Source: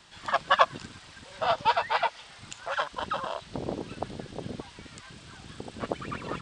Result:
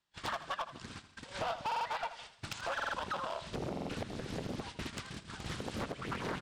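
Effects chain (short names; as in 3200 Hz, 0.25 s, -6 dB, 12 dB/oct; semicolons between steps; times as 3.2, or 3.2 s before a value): gate -45 dBFS, range -38 dB; compressor 20:1, threshold -41 dBFS, peak gain reduction 27.5 dB; hard clip -40 dBFS, distortion -12 dB; feedback echo 81 ms, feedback 42%, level -13 dB; stuck buffer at 1.67/2.75/3.71, samples 2048, times 3; Doppler distortion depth 0.81 ms; gain +8.5 dB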